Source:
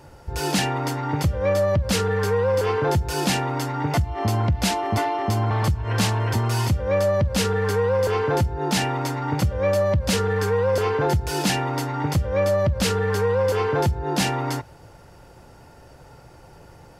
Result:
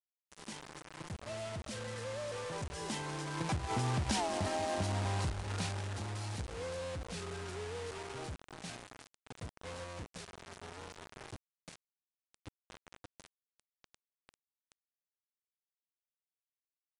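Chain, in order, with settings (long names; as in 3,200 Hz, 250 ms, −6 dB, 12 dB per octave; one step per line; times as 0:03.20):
source passing by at 0:04.21, 39 m/s, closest 2.3 metres
repeating echo 183 ms, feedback 42%, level −17 dB
downward compressor 20 to 1, threshold −41 dBFS, peak gain reduction 20 dB
log-companded quantiser 4 bits
downsampling to 22,050 Hz
level +10 dB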